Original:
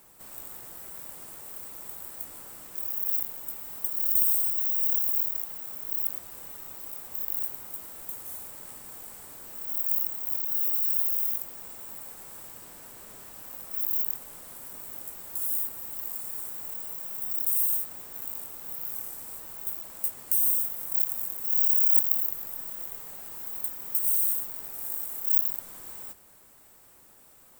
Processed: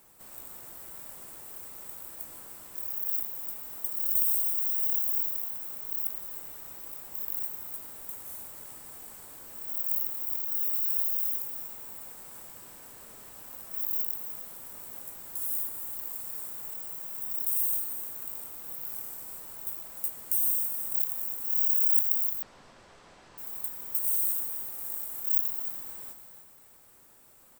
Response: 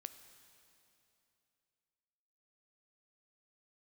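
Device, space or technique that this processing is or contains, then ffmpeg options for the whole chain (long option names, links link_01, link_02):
cave: -filter_complex "[0:a]aecho=1:1:305:0.299[link_01];[1:a]atrim=start_sample=2205[link_02];[link_01][link_02]afir=irnorm=-1:irlink=0,asettb=1/sr,asplit=3[link_03][link_04][link_05];[link_03]atrim=end=22.424[link_06];[link_04]atrim=start=22.42:end=23.38,asetpts=PTS-STARTPTS,afade=type=in:duration=0.004:curve=qsin,afade=type=out:start_time=0.956:duration=0.004:curve=qsin,lowpass=frequency=5400:width=0.5412,lowpass=frequency=5400:width=1.3066[link_07];[link_05]atrim=start=23.376[link_08];[link_06][link_07]acrossfade=duration=0.004:curve1=hsin:curve2=qsin[link_09];[link_09][link_08]acrossfade=duration=0.004:curve1=qsin:curve2=hsin,volume=2.5dB"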